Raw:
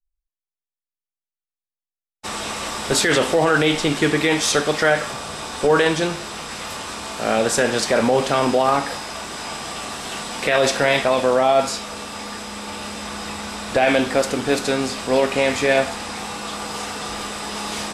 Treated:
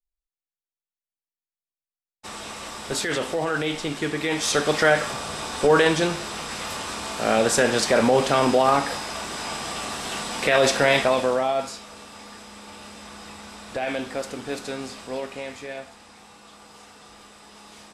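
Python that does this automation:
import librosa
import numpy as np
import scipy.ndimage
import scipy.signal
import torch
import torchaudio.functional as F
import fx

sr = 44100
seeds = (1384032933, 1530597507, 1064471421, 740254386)

y = fx.gain(x, sr, db=fx.line((4.16, -8.5), (4.73, -1.0), (11.02, -1.0), (11.76, -11.0), (14.94, -11.0), (15.81, -19.0)))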